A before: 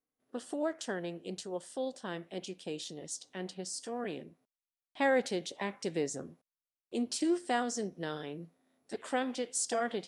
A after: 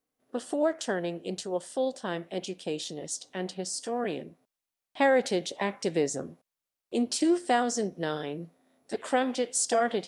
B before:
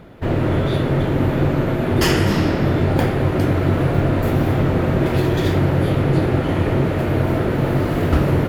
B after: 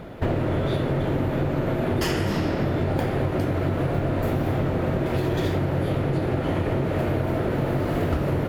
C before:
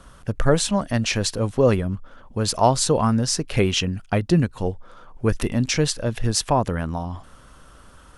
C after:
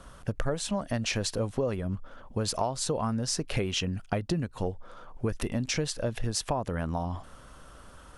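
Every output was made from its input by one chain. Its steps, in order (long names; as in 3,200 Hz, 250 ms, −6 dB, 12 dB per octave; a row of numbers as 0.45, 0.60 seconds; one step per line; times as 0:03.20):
parametric band 630 Hz +3 dB 0.92 octaves
downward compressor 10 to 1, threshold −23 dBFS
normalise the peak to −12 dBFS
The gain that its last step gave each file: +5.5, +3.0, −2.5 decibels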